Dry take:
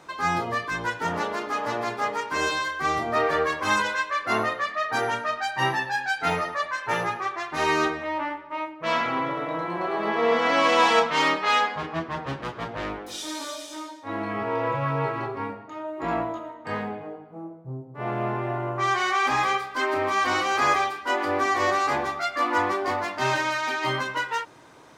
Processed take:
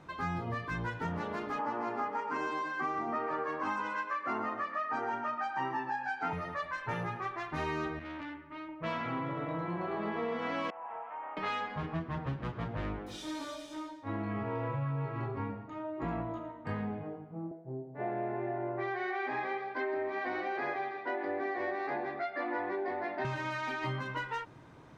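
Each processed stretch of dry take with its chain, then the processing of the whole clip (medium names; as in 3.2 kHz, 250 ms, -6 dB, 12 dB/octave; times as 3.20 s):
1.59–6.33 s: cabinet simulation 250–8300 Hz, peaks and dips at 260 Hz +9 dB, 370 Hz +4 dB, 880 Hz +10 dB, 1.3 kHz +6 dB, 3.7 kHz -9 dB, 7.1 kHz -3 dB + delay 131 ms -8 dB
7.99–8.69 s: high-order bell 750 Hz -9 dB 1.3 oct + transformer saturation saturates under 1.9 kHz
10.70–11.37 s: one-bit delta coder 16 kbps, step -26 dBFS + ladder band-pass 900 Hz, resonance 60% + compression 5:1, threshold -31 dBFS
17.51–23.25 s: cabinet simulation 290–4200 Hz, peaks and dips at 380 Hz +7 dB, 690 Hz +8 dB, 1.2 kHz -10 dB, 1.8 kHz +6 dB, 3 kHz -9 dB + delay 161 ms -13 dB
whole clip: tone controls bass +13 dB, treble -9 dB; compression, threshold -25 dBFS; trim -7 dB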